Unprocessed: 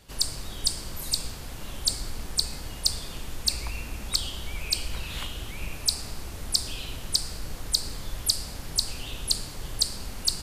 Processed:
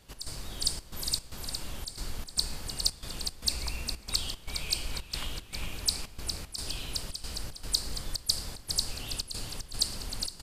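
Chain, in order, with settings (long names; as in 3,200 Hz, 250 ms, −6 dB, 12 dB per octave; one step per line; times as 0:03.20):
repeating echo 409 ms, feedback 57%, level −7 dB
gate pattern "x.xxxx.x" 114 BPM −12 dB
level −3.5 dB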